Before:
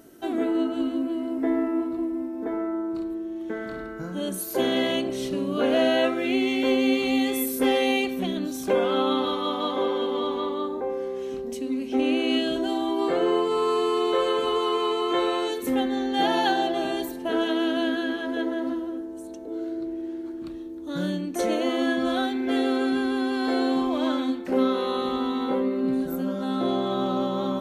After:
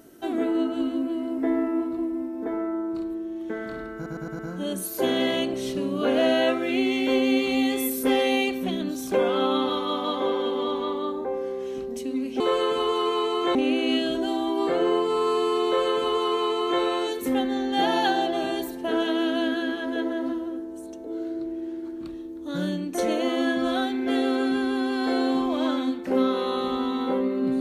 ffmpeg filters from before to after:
-filter_complex "[0:a]asplit=7[s0][s1][s2][s3][s4][s5][s6];[s0]atrim=end=4.062[s7];[s1]atrim=start=3.948:end=4.062[s8];[s2]atrim=start=3.948:end=4.062[s9];[s3]atrim=start=3.948:end=4.062[s10];[s4]atrim=start=3.948:end=11.962[s11];[s5]atrim=start=14.068:end=15.222[s12];[s6]atrim=start=11.958[s13];[s7][s8]acrossfade=d=0.004:c1=hsin:c2=hsin[s14];[s14][s9]acrossfade=d=0.004:c1=hsin:c2=hsin[s15];[s15][s10]acrossfade=d=0.004:c1=hsin:c2=hsin[s16];[s16][s11]acrossfade=d=0.004:c1=hsin:c2=hsin[s17];[s17][s12]acrossfade=d=0.004:c1=hsin:c2=hsin[s18];[s18][s13]acrossfade=d=0.004:c1=hsin:c2=hsin"

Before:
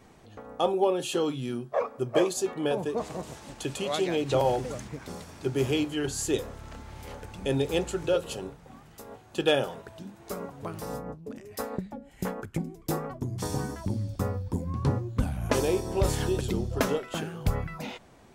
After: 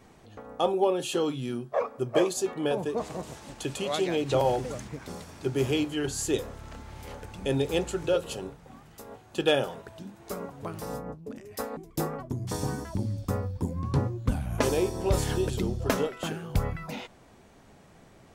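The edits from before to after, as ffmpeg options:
-filter_complex "[0:a]asplit=2[s0][s1];[s0]atrim=end=11.772[s2];[s1]atrim=start=12.678[s3];[s2][s3]acrossfade=d=0.004:c1=hsin:c2=hsin"

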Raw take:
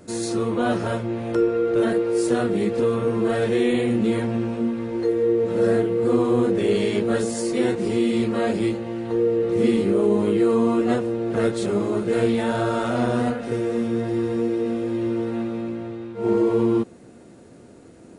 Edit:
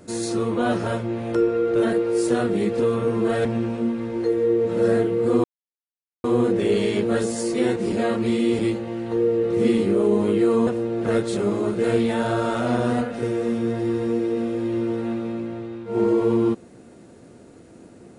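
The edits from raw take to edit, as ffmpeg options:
-filter_complex "[0:a]asplit=6[s0][s1][s2][s3][s4][s5];[s0]atrim=end=3.452[s6];[s1]atrim=start=4.238:end=6.23,asetpts=PTS-STARTPTS,afade=t=out:st=1.988:d=0.004:c=hsin,apad=pad_dur=0.8[s7];[s2]atrim=start=6.23:end=7.912,asetpts=PTS-STARTPTS,afade=t=in:d=0.004:c=hsin[s8];[s3]atrim=start=7.908:end=8.582,asetpts=PTS-STARTPTS,areverse[s9];[s4]atrim=start=8.578:end=10.662[s10];[s5]atrim=start=10.958[s11];[s7][s8]concat=n=2:v=0:a=1[s12];[s6][s12]acrossfade=d=0.004:c1=hsin:c2=hsin[s13];[s13][s9]acrossfade=d=0.004:c1=hsin:c2=hsin[s14];[s14][s10]acrossfade=d=0.004:c1=hsin:c2=hsin[s15];[s15][s11]acrossfade=d=0.004:c1=hsin:c2=hsin"

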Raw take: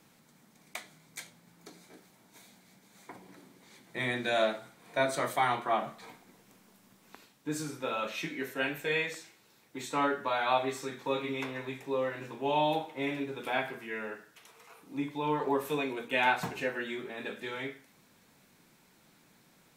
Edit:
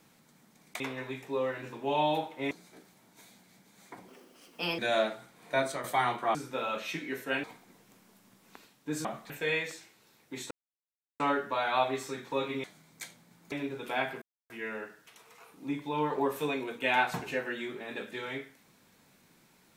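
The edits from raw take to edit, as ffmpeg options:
-filter_complex "[0:a]asplit=14[s0][s1][s2][s3][s4][s5][s6][s7][s8][s9][s10][s11][s12][s13];[s0]atrim=end=0.802[s14];[s1]atrim=start=11.378:end=13.092[s15];[s2]atrim=start=1.678:end=3.254[s16];[s3]atrim=start=3.25:end=4.22,asetpts=PTS-STARTPTS,asetrate=60417,aresample=44100,atrim=end_sample=31224,asetpts=PTS-STARTPTS[s17];[s4]atrim=start=4.216:end=5.27,asetpts=PTS-STARTPTS,afade=t=out:st=0.754:d=0.3:c=qsin:silence=0.354813[s18];[s5]atrim=start=5.27:end=5.782,asetpts=PTS-STARTPTS,afade=t=in:d=0.004:c=hsin:silence=0.354813[s19];[s6]atrim=start=7.638:end=8.732[s20];[s7]atrim=start=6.028:end=7.642[s21];[s8]atrim=start=5.778:end=6.032[s22];[s9]atrim=start=8.728:end=9.94,asetpts=PTS-STARTPTS,afade=t=out:st=1.208:d=0.004:c=hsin,apad=pad_dur=0.69[s23];[s10]atrim=start=9.94:end=11.382,asetpts=PTS-STARTPTS,afade=t=in:d=0.004:c=hsin[s24];[s11]atrim=start=0.798:end=1.682[s25];[s12]atrim=start=13.088:end=13.79,asetpts=PTS-STARTPTS,afade=t=out:st=0.698:d=0.004:c=hsin,apad=pad_dur=0.28[s26];[s13]atrim=start=13.79,asetpts=PTS-STARTPTS,afade=t=in:d=0.004:c=hsin[s27];[s14][s15]acrossfade=d=0.004:c1=hsin:c2=hsin[s28];[s28][s16]acrossfade=d=0.004:c1=hsin:c2=hsin[s29];[s29][s17]acrossfade=d=0.004:c1=hsin:c2=hsin[s30];[s18][s19]concat=n=2:v=0:a=1[s31];[s30][s31]acrossfade=d=0.004:c1=hsin:c2=hsin[s32];[s32][s20]acrossfade=d=0.004:c1=hsin:c2=hsin[s33];[s33][s21]acrossfade=d=0.004:c1=hsin:c2=hsin[s34];[s34][s22]acrossfade=d=0.004:c1=hsin:c2=hsin[s35];[s23][s24]concat=n=2:v=0:a=1[s36];[s35][s36]acrossfade=d=0.004:c1=hsin:c2=hsin[s37];[s37][s25]acrossfade=d=0.004:c1=hsin:c2=hsin[s38];[s26][s27]concat=n=2:v=0:a=1[s39];[s38][s39]acrossfade=d=0.004:c1=hsin:c2=hsin"

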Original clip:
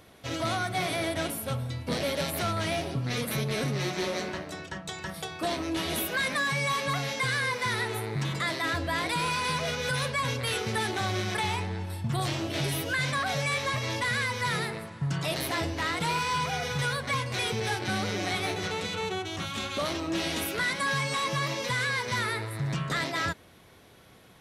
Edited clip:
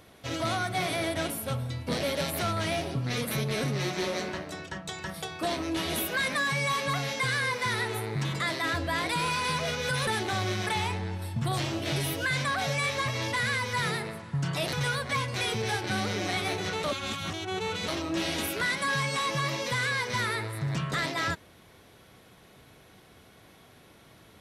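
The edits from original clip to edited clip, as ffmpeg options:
-filter_complex "[0:a]asplit=5[s0][s1][s2][s3][s4];[s0]atrim=end=10.072[s5];[s1]atrim=start=10.748:end=15.412[s6];[s2]atrim=start=16.708:end=18.822[s7];[s3]atrim=start=18.818:end=19.862,asetpts=PTS-STARTPTS,areverse[s8];[s4]atrim=start=19.858[s9];[s5][s6]acrossfade=d=0.004:c1=hsin:c2=hsin[s10];[s10][s7]acrossfade=d=0.004:c1=hsin:c2=hsin[s11];[s11][s8]acrossfade=d=0.004:c1=hsin:c2=hsin[s12];[s12][s9]acrossfade=d=0.004:c1=hsin:c2=hsin"

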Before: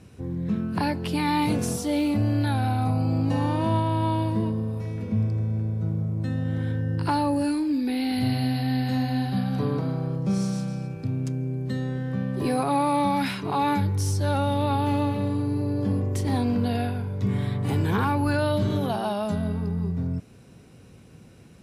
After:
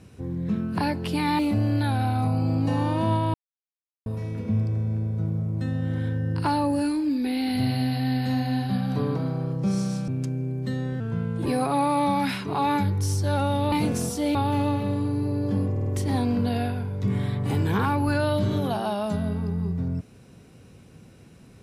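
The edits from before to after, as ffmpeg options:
-filter_complex "[0:a]asplit=12[s0][s1][s2][s3][s4][s5][s6][s7][s8][s9][s10][s11];[s0]atrim=end=1.392[s12];[s1]atrim=start=2.018:end=3.97,asetpts=PTS-STARTPTS,afade=t=out:st=1.948:d=0.004:c=hsin[s13];[s2]atrim=start=3.97:end=4.69,asetpts=PTS-STARTPTS,volume=0[s14];[s3]atrim=start=4.69:end=10.712,asetpts=PTS-STARTPTS,afade=t=in:d=0.004:c=hsin[s15];[s4]atrim=start=11.108:end=12.034[s16];[s5]atrim=start=12.03:end=12.43,asetpts=PTS-STARTPTS,asetrate=38367,aresample=44100[s17];[s6]atrim=start=12.426:end=14.692[s18];[s7]atrim=start=1.388:end=2.022[s19];[s8]atrim=start=14.688:end=16.102[s20];[s9]atrim=start=16.048:end=16.102[s21];[s10]atrim=start=16.048:end=16.102[s22];[s11]atrim=start=16.048[s23];[s13][s14][s15]concat=n=3:v=0:a=1[s24];[s12][s24]acrossfade=d=0.004:c1=hsin:c2=hsin[s25];[s25][s16]acrossfade=d=0.004:c1=hsin:c2=hsin[s26];[s26][s17]acrossfade=d=0.004:c1=hsin:c2=hsin[s27];[s27][s18]acrossfade=d=0.004:c1=hsin:c2=hsin[s28];[s28][s19]acrossfade=d=0.004:c1=hsin:c2=hsin[s29];[s29][s20]acrossfade=d=0.004:c1=hsin:c2=hsin[s30];[s30][s21]acrossfade=d=0.004:c1=hsin:c2=hsin[s31];[s31][s22]acrossfade=d=0.004:c1=hsin:c2=hsin[s32];[s32][s23]acrossfade=d=0.004:c1=hsin:c2=hsin"

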